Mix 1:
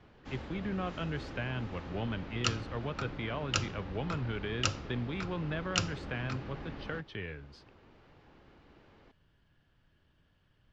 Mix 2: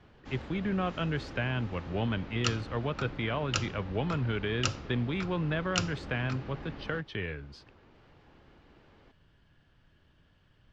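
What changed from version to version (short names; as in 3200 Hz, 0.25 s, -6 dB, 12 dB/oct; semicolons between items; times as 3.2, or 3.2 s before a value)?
speech +5.0 dB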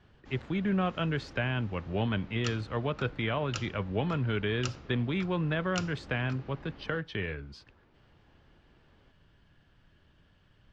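background -6.5 dB; reverb: on, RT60 0.30 s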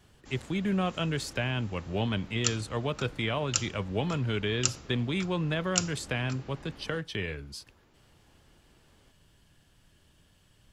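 speech: add bell 1500 Hz -4 dB 0.64 oct; master: remove air absorption 220 m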